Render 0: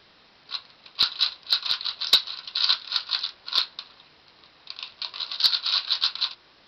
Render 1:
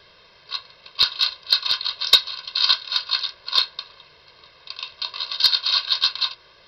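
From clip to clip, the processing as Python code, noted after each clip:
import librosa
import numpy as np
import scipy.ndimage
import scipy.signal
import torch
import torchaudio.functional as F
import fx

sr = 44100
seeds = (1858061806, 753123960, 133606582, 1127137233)

y = x + 0.79 * np.pad(x, (int(1.9 * sr / 1000.0), 0))[:len(x)]
y = y * 10.0 ** (2.0 / 20.0)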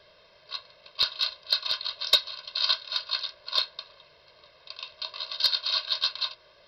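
y = fx.peak_eq(x, sr, hz=610.0, db=11.5, octaves=0.31)
y = y * 10.0 ** (-7.0 / 20.0)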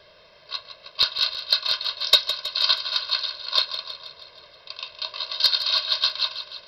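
y = fx.echo_feedback(x, sr, ms=160, feedback_pct=59, wet_db=-11.0)
y = y * 10.0 ** (4.5 / 20.0)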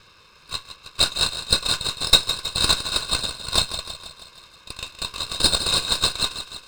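y = fx.lower_of_two(x, sr, delay_ms=0.78)
y = y * 10.0 ** (2.5 / 20.0)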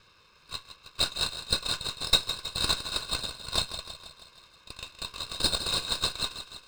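y = scipy.signal.medfilt(x, 3)
y = y * 10.0 ** (-7.5 / 20.0)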